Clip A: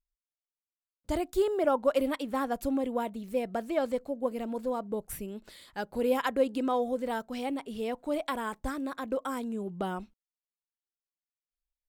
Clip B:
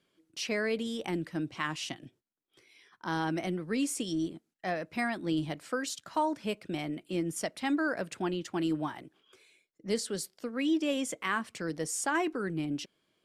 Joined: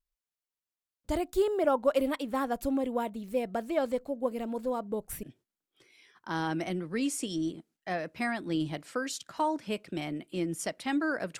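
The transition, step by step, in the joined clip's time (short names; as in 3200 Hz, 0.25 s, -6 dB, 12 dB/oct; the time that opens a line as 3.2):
clip A
5.23 switch to clip B from 2 s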